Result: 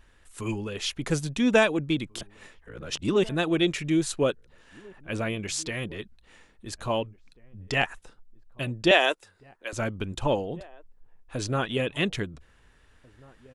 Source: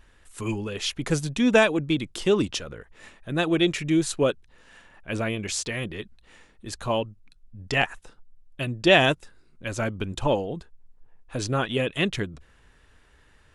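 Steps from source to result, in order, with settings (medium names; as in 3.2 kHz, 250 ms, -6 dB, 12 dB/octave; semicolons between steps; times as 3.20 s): 2.21–3.29 s: reverse; 8.91–9.73 s: high-pass 370 Hz 24 dB/octave; echo from a far wall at 290 m, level -24 dB; trim -2 dB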